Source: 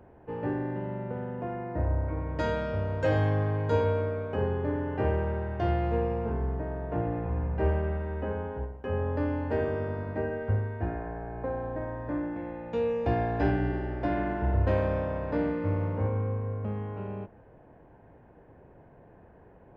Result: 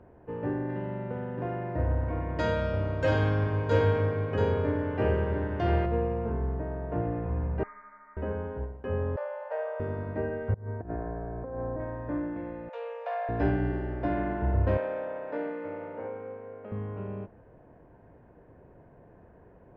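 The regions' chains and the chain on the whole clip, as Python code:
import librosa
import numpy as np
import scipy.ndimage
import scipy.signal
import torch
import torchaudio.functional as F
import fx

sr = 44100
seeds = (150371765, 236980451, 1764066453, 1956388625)

y = fx.chain(x, sr, fx.high_shelf(hz=2600.0, db=11.0),
    fx.echo_single(ms=684, db=-5.0), at=(0.69, 5.86))
y = fx.chain(y, sr, fx.highpass(hz=1400.0, slope=24),
    fx.freq_invert(carrier_hz=2800), at=(7.63, 8.17))
y = fx.chain(y, sr, fx.steep_highpass(hz=520.0, slope=72),
    fx.tilt_eq(slope=-3.5), at=(9.16, 9.8))
y = fx.chain(y, sr, fx.lowpass(hz=1400.0, slope=12),
    fx.over_compress(threshold_db=-34.0, ratio=-0.5), at=(10.54, 11.8))
y = fx.chain(y, sr, fx.self_delay(depth_ms=0.08),
    fx.steep_highpass(hz=500.0, slope=96),
    fx.high_shelf(hz=4300.0, db=-5.5), at=(12.69, 13.29))
y = fx.chain(y, sr, fx.bandpass_edges(low_hz=440.0, high_hz=3800.0),
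    fx.notch(hz=1100.0, q=6.7), at=(14.77, 16.72))
y = fx.lowpass(y, sr, hz=2400.0, slope=6)
y = fx.notch(y, sr, hz=820.0, q=12.0)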